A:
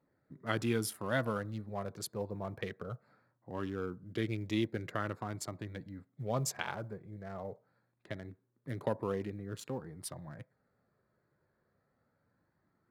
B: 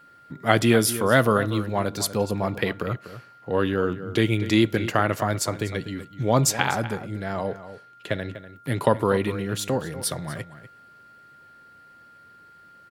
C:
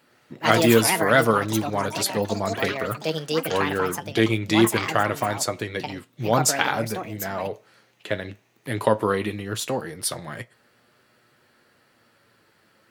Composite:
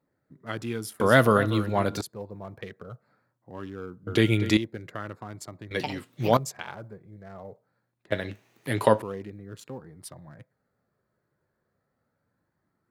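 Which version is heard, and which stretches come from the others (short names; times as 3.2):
A
1–2.01 from B
4.07–4.57 from B
5.71–6.37 from C
8.12–9.02 from C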